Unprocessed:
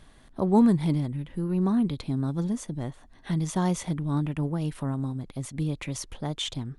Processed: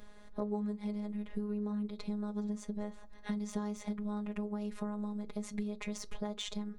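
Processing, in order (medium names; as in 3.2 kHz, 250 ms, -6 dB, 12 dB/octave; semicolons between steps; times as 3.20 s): de-esser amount 70%; robot voice 208 Hz; graphic EQ with 31 bands 500 Hz +10 dB, 3.15 kHz -5 dB, 10 kHz -10 dB; compression 8:1, threshold -34 dBFS, peak gain reduction 19 dB; on a send: reverberation, pre-delay 3 ms, DRR 15.5 dB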